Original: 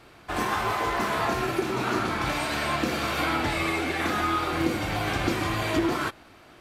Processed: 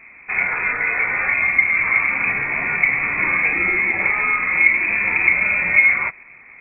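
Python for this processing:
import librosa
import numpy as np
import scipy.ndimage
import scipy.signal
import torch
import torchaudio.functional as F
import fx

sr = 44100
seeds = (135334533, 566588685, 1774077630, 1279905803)

y = fx.low_shelf_res(x, sr, hz=640.0, db=8.0, q=1.5)
y = fx.freq_invert(y, sr, carrier_hz=2500)
y = y * 10.0 ** (2.0 / 20.0)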